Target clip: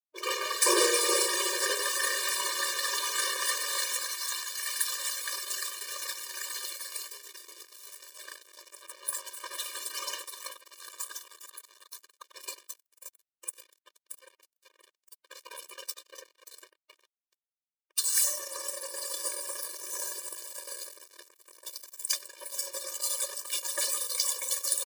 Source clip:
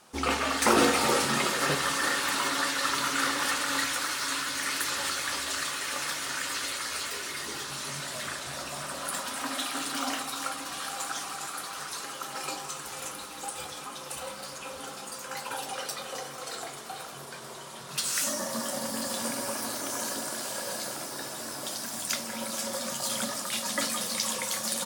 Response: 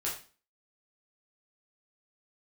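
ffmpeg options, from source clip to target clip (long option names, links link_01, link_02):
-filter_complex "[0:a]asettb=1/sr,asplit=3[link_01][link_02][link_03];[link_01]atrim=end=4.044[link_04];[link_02]atrim=start=4.04:end=5.21,asetpts=PTS-STARTPTS,afade=type=in:duration=0.004:curve=qsin,afade=type=out:start_time=1.166:duration=0.004:curve=qsin,highpass=590[link_05];[link_03]atrim=start=5.206[link_06];[link_04][link_05]acrossfade=duration=0.004:curve1=hsin:curve2=qsin[link_07];[link_07][link_06]acrossfade=duration=0.004:curve1=qsin:curve2=hsin,afftfilt=real='re*gte(hypot(re,im),0.02)':imag='im*gte(hypot(re,im),0.02)':win_size=1024:overlap=0.75,asplit=2[link_08][link_09];[link_09]adelay=96,lowpass=frequency=910:poles=1,volume=-4.5dB,asplit=2[link_10][link_11];[link_11]adelay=96,lowpass=frequency=910:poles=1,volume=0.16,asplit=2[link_12][link_13];[link_13]adelay=96,lowpass=frequency=910:poles=1,volume=0.16[link_14];[link_08][link_10][link_12][link_14]amix=inputs=4:normalize=0,aeval=exprs='sgn(val(0))*max(abs(val(0))-0.0168,0)':channel_layout=same,crystalizer=i=3:c=0,afftfilt=real='re*eq(mod(floor(b*sr/1024/310),2),1)':imag='im*eq(mod(floor(b*sr/1024/310),2),1)':win_size=1024:overlap=0.75,volume=-1dB"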